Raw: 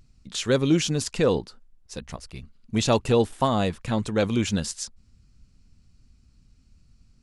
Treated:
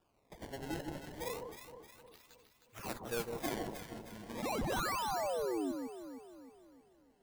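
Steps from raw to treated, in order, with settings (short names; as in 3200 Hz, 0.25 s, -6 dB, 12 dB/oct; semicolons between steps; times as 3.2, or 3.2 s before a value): median-filter separation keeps harmonic; differentiator; 4.42–5.72 painted sound fall 250–2900 Hz -43 dBFS; decimation with a swept rate 21×, swing 160% 0.32 Hz; 1.2–3.49 high shelf 8400 Hz +8 dB; echo with dull and thin repeats by turns 0.156 s, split 1100 Hz, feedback 68%, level -4.5 dB; gain +6 dB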